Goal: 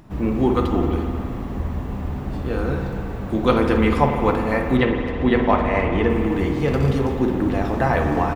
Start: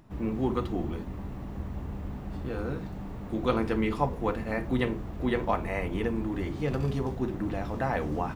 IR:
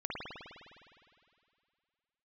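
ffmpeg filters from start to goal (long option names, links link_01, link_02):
-filter_complex "[0:a]asettb=1/sr,asplit=3[link_01][link_02][link_03];[link_01]atrim=end=4.774[link_04];[link_02]atrim=start=4.77:end=6.1,asetpts=PTS-STARTPTS,afade=type=in:duration=0.004:curve=qsin,afade=type=out:start_time=1.326:duration=0.004:curve=qsin,lowpass=4600[link_05];[link_03]atrim=start=6.096[link_06];[link_04][link_05]acrossfade=duration=0.004:curve1=hsin:curve2=qsin[link_07];[link_07][link_06]acrossfade=duration=0.004:curve1=qsin:curve2=hsin,asplit=2[link_08][link_09];[link_09]adelay=260,highpass=300,lowpass=3400,asoftclip=type=hard:threshold=-22dB,volume=-14dB[link_10];[link_08][link_10]amix=inputs=2:normalize=0,asplit=2[link_11][link_12];[1:a]atrim=start_sample=2205[link_13];[link_12][link_13]afir=irnorm=-1:irlink=0,volume=-4.5dB[link_14];[link_11][link_14]amix=inputs=2:normalize=0,volume=6dB"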